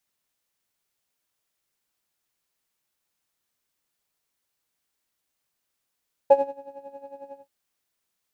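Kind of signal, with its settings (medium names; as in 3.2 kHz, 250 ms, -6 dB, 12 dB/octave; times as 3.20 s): synth patch with tremolo C#5, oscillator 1 triangle, oscillator 2 triangle, interval +7 st, oscillator 2 level -0.5 dB, sub -27 dB, noise -14.5 dB, filter bandpass, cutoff 160 Hz, Q 1.9, filter envelope 1.5 oct, filter decay 0.14 s, filter sustain 45%, attack 7.9 ms, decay 0.22 s, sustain -20.5 dB, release 0.14 s, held 1.04 s, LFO 11 Hz, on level 13 dB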